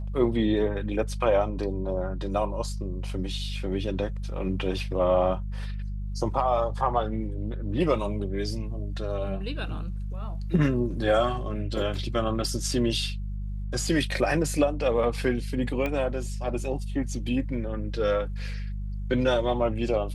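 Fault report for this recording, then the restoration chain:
hum 50 Hz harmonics 4 -32 dBFS
15.86 pop -17 dBFS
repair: de-click; de-hum 50 Hz, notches 4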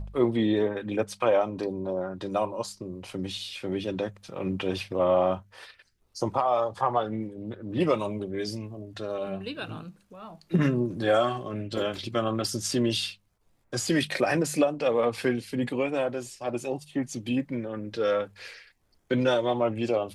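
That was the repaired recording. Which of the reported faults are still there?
none

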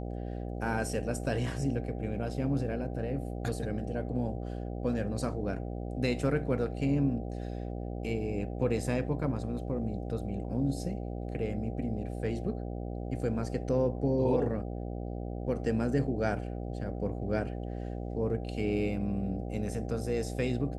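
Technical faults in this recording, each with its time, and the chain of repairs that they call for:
buzz 60 Hz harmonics 13 -37 dBFS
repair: de-hum 60 Hz, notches 13

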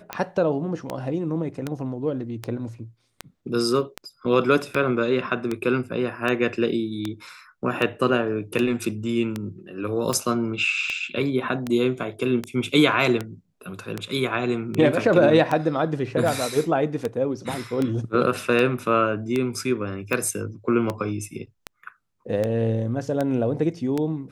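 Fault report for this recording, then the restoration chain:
tick 78 rpm -12 dBFS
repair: de-click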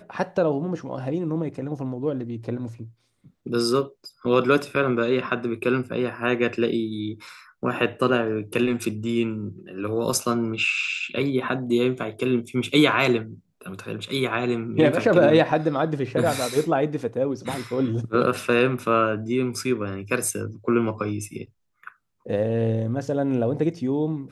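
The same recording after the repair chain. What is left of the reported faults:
none

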